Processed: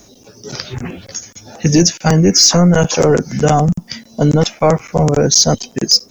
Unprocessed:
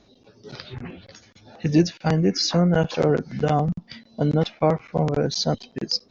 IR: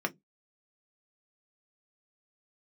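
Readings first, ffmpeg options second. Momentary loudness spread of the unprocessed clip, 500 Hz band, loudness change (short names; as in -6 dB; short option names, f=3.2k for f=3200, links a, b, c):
17 LU, +8.5 dB, +10.0 dB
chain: -filter_complex "[0:a]acrossover=split=510[a][b];[b]aexciter=amount=10.1:drive=6.6:freq=6k[c];[a][c]amix=inputs=2:normalize=0,apsyclip=14dB,volume=-3.5dB"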